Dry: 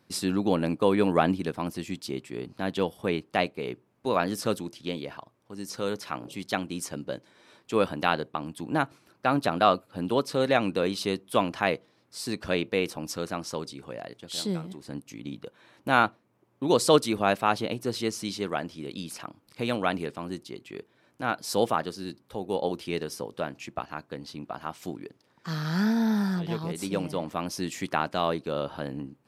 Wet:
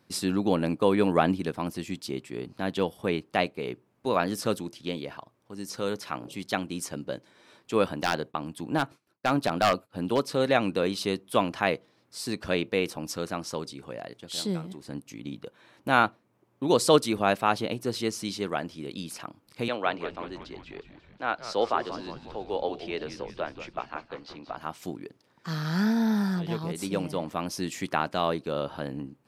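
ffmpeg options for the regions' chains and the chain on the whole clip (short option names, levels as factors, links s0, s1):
-filter_complex "[0:a]asettb=1/sr,asplit=3[s0][s1][s2];[s0]atrim=end=7.984[s3];[s1]atrim=start=7.98:end=10.35,asetpts=PTS-STARTPTS,afade=t=in:d=0.004:c=qsin,afade=t=out:st=2.366:d=0.004:c=qsin,agate=range=0.0224:threshold=0.00282:ratio=3:release=100:detection=peak,aeval=exprs='0.2*(abs(mod(val(0)/0.2+3,4)-2)-1)':c=same[s4];[s2]atrim=start=10.346[s5];[s3][s4]acrossfade=d=0.004:c1=hsin:c2=qsin[s6];[s6][s5]acrossfade=d=0.004:c1=qsin:c2=hsin,asettb=1/sr,asplit=3[s7][s8][s9];[s7]atrim=end=19.684[s10];[s8]atrim=start=19.68:end=24.57,asetpts=PTS-STARTPTS,afade=t=in:d=0.004:c=qsin,afade=t=out:st=4.886:d=0.004:c=qsin,lowpass=8400,acrossover=split=320 5500:gain=0.2 1 0.112[s11][s12][s13];[s11][s12][s13]amix=inputs=3:normalize=0,asplit=8[s14][s15][s16][s17][s18][s19][s20][s21];[s15]adelay=180,afreqshift=-110,volume=0.251[s22];[s16]adelay=360,afreqshift=-220,volume=0.155[s23];[s17]adelay=540,afreqshift=-330,volume=0.0966[s24];[s18]adelay=720,afreqshift=-440,volume=0.0596[s25];[s19]adelay=900,afreqshift=-550,volume=0.0372[s26];[s20]adelay=1080,afreqshift=-660,volume=0.0229[s27];[s21]adelay=1260,afreqshift=-770,volume=0.0143[s28];[s14][s22][s23][s24][s25][s26][s27][s28]amix=inputs=8:normalize=0,atrim=end_sample=215649[s29];[s9]atrim=start=24.566[s30];[s10][s29]acrossfade=d=0.004:c1=hsin:c2=qsin[s31];[s31][s30]acrossfade=d=0.004:c1=qsin:c2=hsin"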